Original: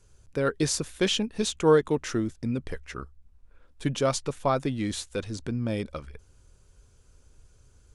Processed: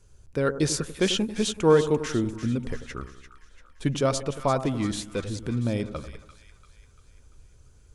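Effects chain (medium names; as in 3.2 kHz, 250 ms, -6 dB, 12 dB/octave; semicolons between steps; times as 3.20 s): bass shelf 330 Hz +3 dB; two-band feedback delay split 1.2 kHz, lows 92 ms, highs 343 ms, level -11.5 dB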